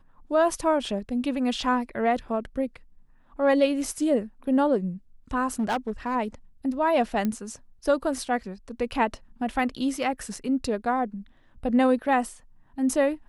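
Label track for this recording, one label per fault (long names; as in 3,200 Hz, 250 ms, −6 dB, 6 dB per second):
5.540000	6.160000	clipping −21.5 dBFS
7.250000	7.250000	click −15 dBFS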